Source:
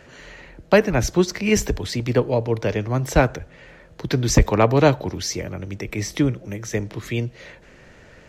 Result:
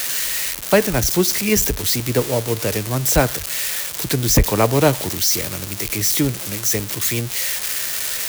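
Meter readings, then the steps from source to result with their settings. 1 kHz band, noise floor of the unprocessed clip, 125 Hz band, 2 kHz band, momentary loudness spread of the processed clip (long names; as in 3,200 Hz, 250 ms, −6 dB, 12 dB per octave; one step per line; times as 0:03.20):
+0.5 dB, −48 dBFS, 0.0 dB, +2.5 dB, 6 LU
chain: spike at every zero crossing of −11.5 dBFS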